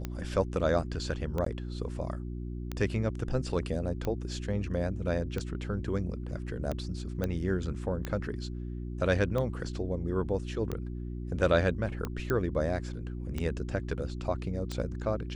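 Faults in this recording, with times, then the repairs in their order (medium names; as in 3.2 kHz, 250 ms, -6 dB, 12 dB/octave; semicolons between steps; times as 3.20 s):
hum 60 Hz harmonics 6 -37 dBFS
tick 45 rpm -20 dBFS
1.45–1.46 s: dropout 13 ms
7.24 s: pop -18 dBFS
12.30 s: pop -17 dBFS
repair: de-click; de-hum 60 Hz, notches 6; interpolate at 1.45 s, 13 ms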